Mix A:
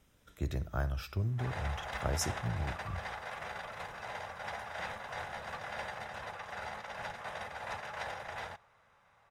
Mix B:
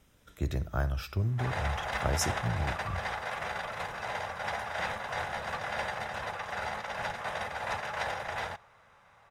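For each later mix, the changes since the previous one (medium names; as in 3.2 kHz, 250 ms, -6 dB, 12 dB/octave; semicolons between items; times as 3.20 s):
speech +3.5 dB; background +6.5 dB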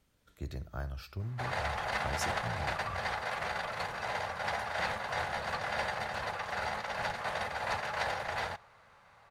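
speech -8.5 dB; master: remove Butterworth band-stop 4.4 kHz, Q 7.7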